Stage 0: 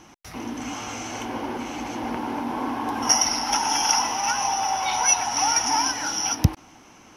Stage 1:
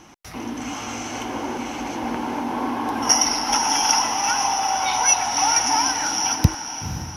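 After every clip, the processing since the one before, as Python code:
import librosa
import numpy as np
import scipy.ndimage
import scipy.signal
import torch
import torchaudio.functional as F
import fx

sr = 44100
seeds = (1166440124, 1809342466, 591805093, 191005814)

y = fx.echo_diffused(x, sr, ms=499, feedback_pct=47, wet_db=-9.5)
y = y * librosa.db_to_amplitude(2.0)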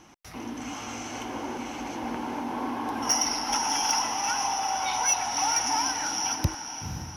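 y = 10.0 ** (-8.0 / 20.0) * np.tanh(x / 10.0 ** (-8.0 / 20.0))
y = y * librosa.db_to_amplitude(-6.0)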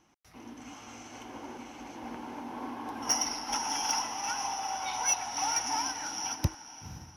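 y = fx.upward_expand(x, sr, threshold_db=-42.0, expansion=1.5)
y = y * librosa.db_to_amplitude(-2.5)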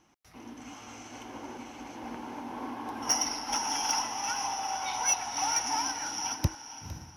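y = x + 10.0 ** (-15.0 / 20.0) * np.pad(x, (int(458 * sr / 1000.0), 0))[:len(x)]
y = y * librosa.db_to_amplitude(1.0)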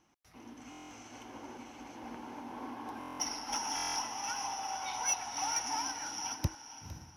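y = fx.buffer_glitch(x, sr, at_s=(0.7, 2.99, 3.75), block=1024, repeats=8)
y = y * librosa.db_to_amplitude(-5.0)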